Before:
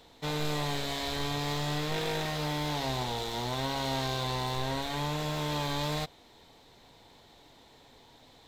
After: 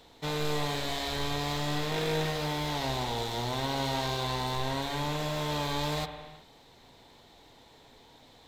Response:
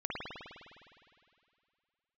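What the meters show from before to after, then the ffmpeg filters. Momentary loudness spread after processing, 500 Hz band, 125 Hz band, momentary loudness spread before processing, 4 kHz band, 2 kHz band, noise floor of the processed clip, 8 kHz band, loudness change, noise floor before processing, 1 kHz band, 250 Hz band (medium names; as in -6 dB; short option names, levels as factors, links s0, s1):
2 LU, +1.5 dB, 0.0 dB, 2 LU, +0.5 dB, +1.0 dB, -57 dBFS, +0.5 dB, +1.0 dB, -58 dBFS, +1.0 dB, +0.5 dB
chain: -filter_complex "[0:a]asplit=2[s0][s1];[1:a]atrim=start_sample=2205,afade=t=out:st=0.44:d=0.01,atrim=end_sample=19845[s2];[s1][s2]afir=irnorm=-1:irlink=0,volume=0.316[s3];[s0][s3]amix=inputs=2:normalize=0,volume=0.841"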